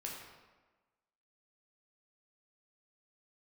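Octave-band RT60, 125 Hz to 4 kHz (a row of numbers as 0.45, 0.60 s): 1.1, 1.3, 1.3, 1.3, 1.1, 0.85 s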